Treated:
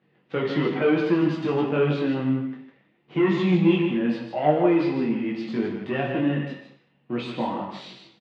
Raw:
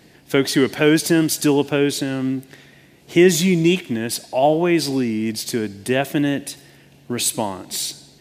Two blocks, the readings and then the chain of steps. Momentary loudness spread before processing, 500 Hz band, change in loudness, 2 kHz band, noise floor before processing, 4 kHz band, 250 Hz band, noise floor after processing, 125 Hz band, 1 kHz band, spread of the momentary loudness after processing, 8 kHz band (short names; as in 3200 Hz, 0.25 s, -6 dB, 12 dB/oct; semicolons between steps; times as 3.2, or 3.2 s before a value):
10 LU, -4.5 dB, -4.5 dB, -7.0 dB, -50 dBFS, -12.5 dB, -4.0 dB, -65 dBFS, -3.0 dB, -3.0 dB, 13 LU, under -35 dB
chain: sample leveller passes 2; speaker cabinet 190–2400 Hz, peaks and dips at 270 Hz -8 dB, 410 Hz -8 dB, 650 Hz -9 dB, 920 Hz -5 dB, 1600 Hz -9 dB, 2200 Hz -7 dB; echo 0.153 s -7.5 dB; non-linear reverb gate 0.26 s falling, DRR 3 dB; detuned doubles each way 18 cents; gain -2.5 dB